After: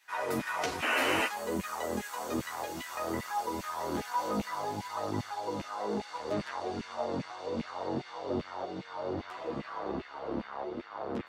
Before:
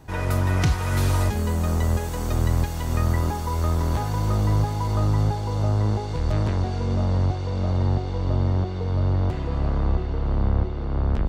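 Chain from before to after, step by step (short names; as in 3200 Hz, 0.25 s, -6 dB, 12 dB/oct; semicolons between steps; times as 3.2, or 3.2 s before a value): LFO high-pass saw down 2.5 Hz 210–2400 Hz; painted sound noise, 0.82–1.27, 230–3100 Hz -24 dBFS; chorus voices 2, 0.59 Hz, delay 12 ms, depth 3.5 ms; gain -3 dB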